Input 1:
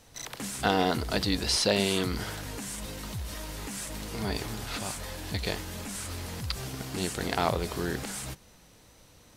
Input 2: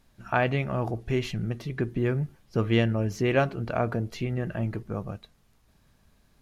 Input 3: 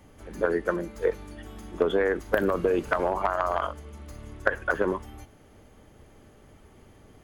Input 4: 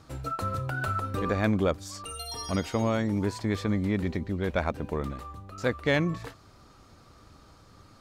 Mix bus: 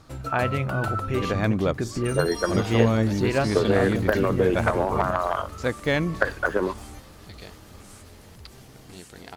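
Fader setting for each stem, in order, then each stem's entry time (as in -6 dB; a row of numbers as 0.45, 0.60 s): -12.0, -0.5, +1.5, +1.5 dB; 1.95, 0.00, 1.75, 0.00 s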